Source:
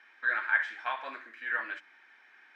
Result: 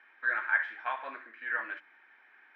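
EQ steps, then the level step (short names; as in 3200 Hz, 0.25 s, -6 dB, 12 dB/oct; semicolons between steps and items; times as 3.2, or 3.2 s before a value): HPF 190 Hz; LPF 2400 Hz 12 dB/oct; 0.0 dB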